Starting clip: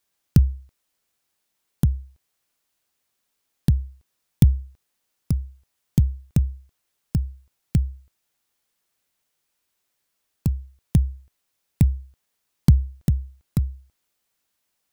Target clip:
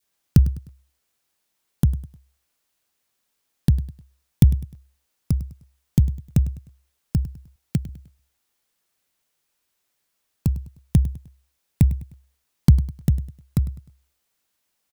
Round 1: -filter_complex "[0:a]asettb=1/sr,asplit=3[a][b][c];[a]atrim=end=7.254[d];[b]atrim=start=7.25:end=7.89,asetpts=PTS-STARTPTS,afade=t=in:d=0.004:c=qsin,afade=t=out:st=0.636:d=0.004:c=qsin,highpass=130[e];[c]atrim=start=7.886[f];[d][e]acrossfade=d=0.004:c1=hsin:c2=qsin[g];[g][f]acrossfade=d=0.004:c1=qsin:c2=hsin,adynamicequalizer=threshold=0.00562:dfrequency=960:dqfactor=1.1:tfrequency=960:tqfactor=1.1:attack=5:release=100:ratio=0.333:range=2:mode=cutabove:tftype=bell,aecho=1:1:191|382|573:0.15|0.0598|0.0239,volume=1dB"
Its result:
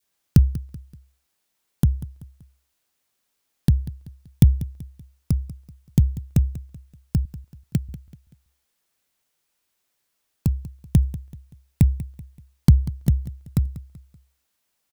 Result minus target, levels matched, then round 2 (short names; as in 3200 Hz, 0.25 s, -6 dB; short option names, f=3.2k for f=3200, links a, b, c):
echo 89 ms late
-filter_complex "[0:a]asettb=1/sr,asplit=3[a][b][c];[a]atrim=end=7.254[d];[b]atrim=start=7.25:end=7.89,asetpts=PTS-STARTPTS,afade=t=in:d=0.004:c=qsin,afade=t=out:st=0.636:d=0.004:c=qsin,highpass=130[e];[c]atrim=start=7.886[f];[d][e]acrossfade=d=0.004:c1=hsin:c2=qsin[g];[g][f]acrossfade=d=0.004:c1=qsin:c2=hsin,adynamicequalizer=threshold=0.00562:dfrequency=960:dqfactor=1.1:tfrequency=960:tqfactor=1.1:attack=5:release=100:ratio=0.333:range=2:mode=cutabove:tftype=bell,aecho=1:1:102|204|306:0.15|0.0598|0.0239,volume=1dB"